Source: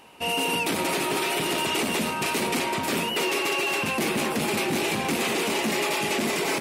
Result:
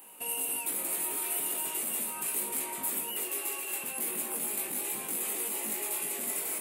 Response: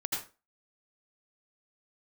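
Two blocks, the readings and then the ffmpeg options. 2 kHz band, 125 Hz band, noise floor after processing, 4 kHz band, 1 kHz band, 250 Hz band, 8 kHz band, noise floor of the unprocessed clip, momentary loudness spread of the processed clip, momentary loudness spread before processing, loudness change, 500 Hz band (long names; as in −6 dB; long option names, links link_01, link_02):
−15.5 dB, −22.0 dB, −39 dBFS, −16.0 dB, −15.0 dB, −17.5 dB, +1.0 dB, −29 dBFS, 2 LU, 2 LU, −6.0 dB, −16.0 dB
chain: -af "highpass=210,alimiter=level_in=1.5dB:limit=-24dB:level=0:latency=1:release=250,volume=-1.5dB,flanger=delay=19:depth=2.6:speed=0.36,aexciter=amount=9.2:drive=7.4:freq=7900,volume=-4.5dB"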